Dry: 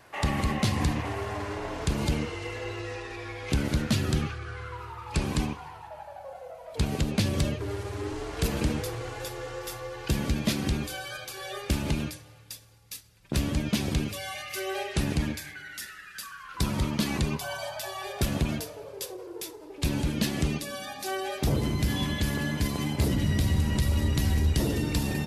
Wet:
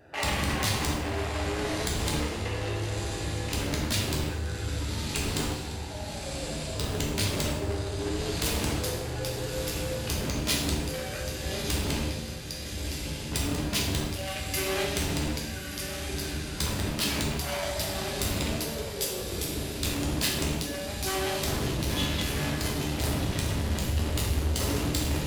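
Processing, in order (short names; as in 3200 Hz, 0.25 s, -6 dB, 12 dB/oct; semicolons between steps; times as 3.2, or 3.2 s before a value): Wiener smoothing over 41 samples; diffused feedback echo 1.254 s, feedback 49%, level -11 dB; soft clip -33.5 dBFS, distortion -5 dB; tilt shelf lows -6 dB, about 1100 Hz; plate-style reverb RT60 0.82 s, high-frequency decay 0.9×, DRR -2.5 dB; gain +7 dB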